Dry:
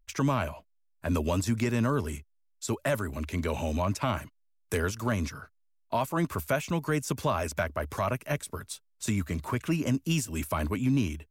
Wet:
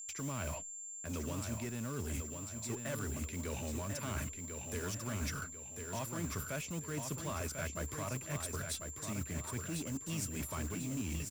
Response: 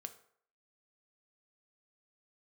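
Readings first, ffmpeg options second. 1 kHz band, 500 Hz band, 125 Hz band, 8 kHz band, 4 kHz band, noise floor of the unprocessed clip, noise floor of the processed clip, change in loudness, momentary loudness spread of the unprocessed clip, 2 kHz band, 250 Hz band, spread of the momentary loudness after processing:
-13.0 dB, -12.5 dB, -9.5 dB, +0.5 dB, -7.0 dB, -70 dBFS, -47 dBFS, -9.5 dB, 9 LU, -9.5 dB, -11.5 dB, 3 LU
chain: -filter_complex "[0:a]agate=range=-13dB:threshold=-55dB:ratio=16:detection=peak,equalizer=f=810:w=1.4:g=-6.5,areverse,acompressor=threshold=-40dB:ratio=10,areverse,aeval=exprs='val(0)+0.00355*sin(2*PI*7300*n/s)':c=same,asplit=2[a][b];[b]aeval=exprs='(mod(100*val(0)+1,2)-1)/100':c=same,volume=-10dB[c];[a][c]amix=inputs=2:normalize=0,aecho=1:1:1045|2090|3135|4180|5225:0.501|0.195|0.0762|0.0297|0.0116,volume=2.5dB"

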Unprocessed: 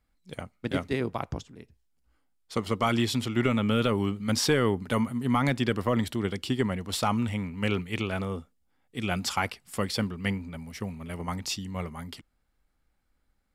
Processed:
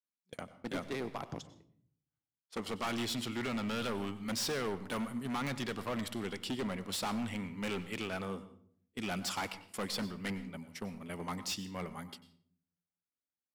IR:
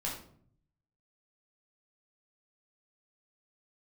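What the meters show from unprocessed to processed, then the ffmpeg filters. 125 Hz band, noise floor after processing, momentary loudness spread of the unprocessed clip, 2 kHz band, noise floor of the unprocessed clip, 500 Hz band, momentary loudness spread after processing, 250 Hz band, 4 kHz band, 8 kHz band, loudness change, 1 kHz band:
-13.5 dB, under -85 dBFS, 13 LU, -8.0 dB, -73 dBFS, -9.5 dB, 10 LU, -9.5 dB, -6.0 dB, -5.5 dB, -9.0 dB, -8.5 dB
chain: -filter_complex "[0:a]highpass=170,agate=range=-22dB:threshold=-42dB:ratio=16:detection=peak,adynamicequalizer=threshold=0.0126:dfrequency=310:dqfactor=0.74:tfrequency=310:tqfactor=0.74:attack=5:release=100:ratio=0.375:range=2.5:mode=cutabove:tftype=bell,asoftclip=type=hard:threshold=-29dB,asplit=2[a][b];[1:a]atrim=start_sample=2205,adelay=93[c];[b][c]afir=irnorm=-1:irlink=0,volume=-17dB[d];[a][d]amix=inputs=2:normalize=0,volume=-3.5dB"

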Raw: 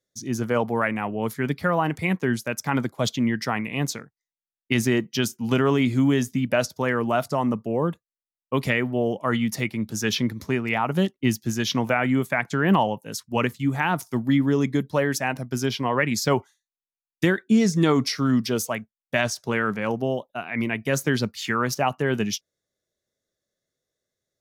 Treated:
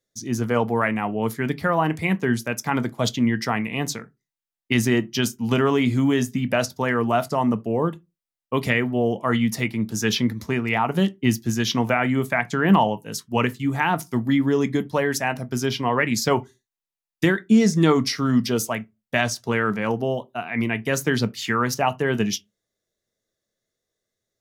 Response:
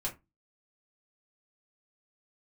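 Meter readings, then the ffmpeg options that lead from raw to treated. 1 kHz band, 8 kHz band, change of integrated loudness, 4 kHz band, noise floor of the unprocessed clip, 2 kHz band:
+2.5 dB, +1.5 dB, +1.5 dB, +1.5 dB, under -85 dBFS, +1.5 dB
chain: -filter_complex "[0:a]asplit=2[a][b];[1:a]atrim=start_sample=2205,asetrate=52920,aresample=44100[c];[b][c]afir=irnorm=-1:irlink=0,volume=-9.5dB[d];[a][d]amix=inputs=2:normalize=0"

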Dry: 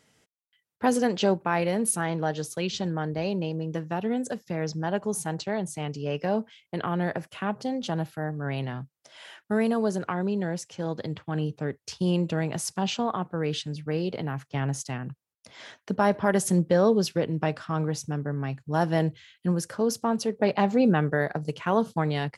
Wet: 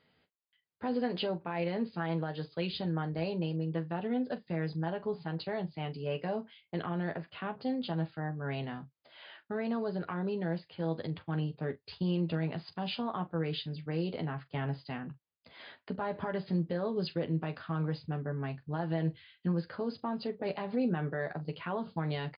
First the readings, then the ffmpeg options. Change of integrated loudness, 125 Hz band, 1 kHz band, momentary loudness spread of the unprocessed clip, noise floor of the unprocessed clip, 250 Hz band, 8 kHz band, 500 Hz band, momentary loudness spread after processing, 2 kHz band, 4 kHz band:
-7.5 dB, -5.5 dB, -9.5 dB, 10 LU, -82 dBFS, -7.0 dB, under -40 dB, -9.0 dB, 6 LU, -8.5 dB, -6.5 dB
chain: -af "alimiter=limit=-19dB:level=0:latency=1:release=95,aecho=1:1:12|43:0.501|0.178,volume=-5.5dB" -ar 11025 -c:a libmp3lame -b:a 64k

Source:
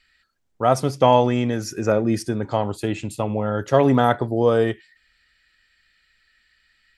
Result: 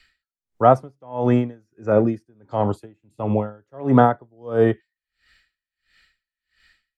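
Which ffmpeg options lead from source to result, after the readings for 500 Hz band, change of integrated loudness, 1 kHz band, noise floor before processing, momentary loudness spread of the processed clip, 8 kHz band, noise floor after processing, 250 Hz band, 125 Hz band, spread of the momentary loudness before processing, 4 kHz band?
-1.0 dB, 0.0 dB, -0.5 dB, -66 dBFS, 16 LU, under -20 dB, under -85 dBFS, +0.5 dB, -0.5 dB, 9 LU, under -10 dB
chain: -filter_complex "[0:a]acrossover=split=190|690|1700[a][b][c][d];[d]acompressor=threshold=-49dB:ratio=6[e];[a][b][c][e]amix=inputs=4:normalize=0,aeval=exprs='val(0)*pow(10,-37*(0.5-0.5*cos(2*PI*1.5*n/s))/20)':c=same,volume=5.5dB"

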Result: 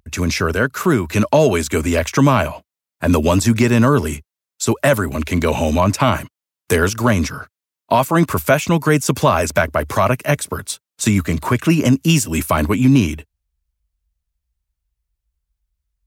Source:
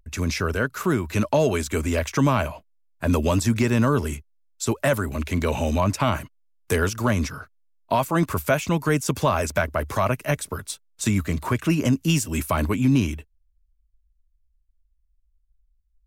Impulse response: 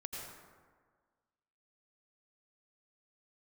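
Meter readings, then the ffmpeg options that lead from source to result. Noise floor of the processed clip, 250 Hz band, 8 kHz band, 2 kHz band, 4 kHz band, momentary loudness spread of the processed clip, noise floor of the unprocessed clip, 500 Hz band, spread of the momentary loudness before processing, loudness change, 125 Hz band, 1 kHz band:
under -85 dBFS, +7.0 dB, +7.0 dB, +7.0 dB, +7.0 dB, 8 LU, -67 dBFS, +7.0 dB, 8 LU, +6.5 dB, +6.0 dB, +7.0 dB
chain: -af "highpass=84,volume=7dB"

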